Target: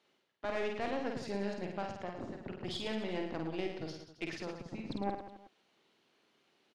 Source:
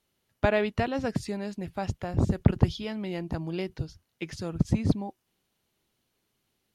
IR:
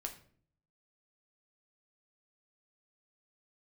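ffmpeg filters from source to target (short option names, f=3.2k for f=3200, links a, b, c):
-af "areverse,acompressor=threshold=-38dB:ratio=16,areverse,highpass=280,lowpass=4.1k,aeval=exprs='(tanh(79.4*val(0)+0.6)-tanh(0.6))/79.4':c=same,aecho=1:1:50|110|182|268.4|372.1:0.631|0.398|0.251|0.158|0.1,volume=8.5dB"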